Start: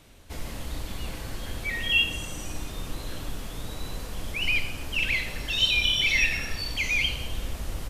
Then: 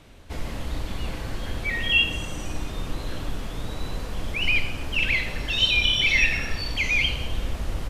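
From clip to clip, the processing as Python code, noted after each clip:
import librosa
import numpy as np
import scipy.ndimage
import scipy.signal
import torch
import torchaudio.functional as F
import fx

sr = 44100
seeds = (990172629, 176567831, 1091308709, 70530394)

y = fx.lowpass(x, sr, hz=3500.0, slope=6)
y = y * 10.0 ** (4.5 / 20.0)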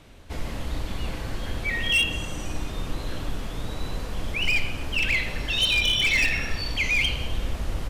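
y = np.clip(10.0 ** (17.0 / 20.0) * x, -1.0, 1.0) / 10.0 ** (17.0 / 20.0)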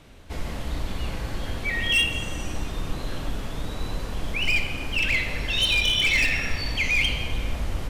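y = fx.rev_plate(x, sr, seeds[0], rt60_s=3.0, hf_ratio=0.45, predelay_ms=0, drr_db=7.5)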